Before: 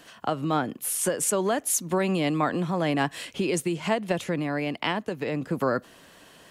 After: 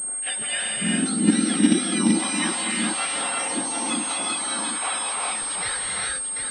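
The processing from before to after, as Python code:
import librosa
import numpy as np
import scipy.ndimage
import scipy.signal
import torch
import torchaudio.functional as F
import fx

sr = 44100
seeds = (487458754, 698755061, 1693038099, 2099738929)

p1 = fx.octave_mirror(x, sr, pivot_hz=1500.0)
p2 = fx.low_shelf(p1, sr, hz=500.0, db=-8.5)
p3 = p2 + 10.0 ** (-8.5 / 20.0) * np.pad(p2, (int(738 * sr / 1000.0), 0))[:len(p2)]
p4 = fx.rev_gated(p3, sr, seeds[0], gate_ms=440, shape='rising', drr_db=-2.5)
p5 = fx.level_steps(p4, sr, step_db=19)
p6 = p4 + (p5 * 10.0 ** (-2.0 / 20.0))
y = fx.pwm(p6, sr, carrier_hz=8500.0)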